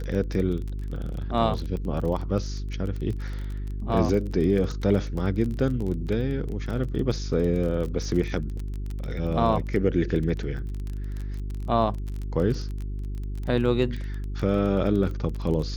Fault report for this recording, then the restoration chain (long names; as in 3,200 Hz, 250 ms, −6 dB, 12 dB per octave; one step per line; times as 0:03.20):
surface crackle 23 per second −30 dBFS
mains hum 50 Hz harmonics 8 −31 dBFS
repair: click removal
hum removal 50 Hz, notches 8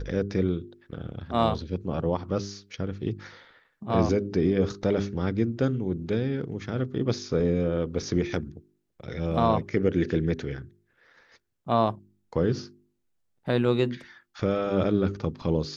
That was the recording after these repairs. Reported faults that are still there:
none of them is left